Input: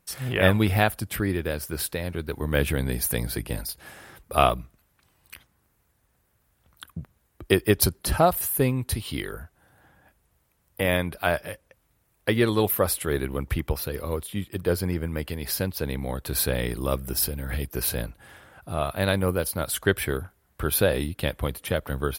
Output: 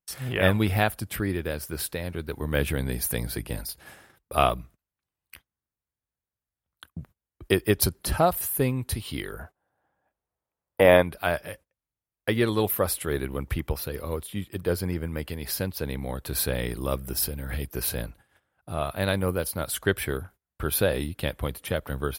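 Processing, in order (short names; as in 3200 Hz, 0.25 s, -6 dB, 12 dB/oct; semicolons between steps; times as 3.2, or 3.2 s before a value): gate -45 dBFS, range -23 dB; 9.39–11.03 bell 680 Hz +12.5 dB 2.6 oct; gain -2 dB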